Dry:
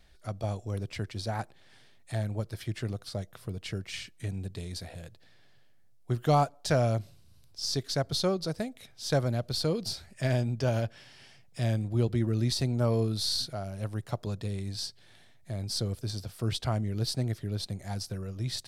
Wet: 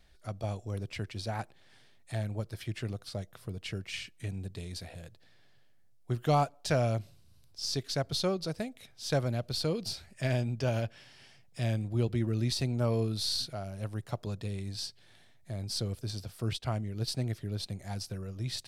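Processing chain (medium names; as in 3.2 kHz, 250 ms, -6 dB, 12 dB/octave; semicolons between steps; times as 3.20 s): dynamic bell 2.6 kHz, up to +5 dB, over -56 dBFS, Q 2.7; 16.53–17.08 s: upward expansion 1.5:1, over -47 dBFS; trim -2.5 dB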